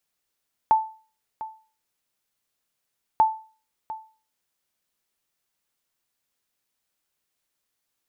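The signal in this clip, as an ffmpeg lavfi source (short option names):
-f lavfi -i "aevalsrc='0.299*(sin(2*PI*879*mod(t,2.49))*exp(-6.91*mod(t,2.49)/0.38)+0.158*sin(2*PI*879*max(mod(t,2.49)-0.7,0))*exp(-6.91*max(mod(t,2.49)-0.7,0)/0.38))':d=4.98:s=44100"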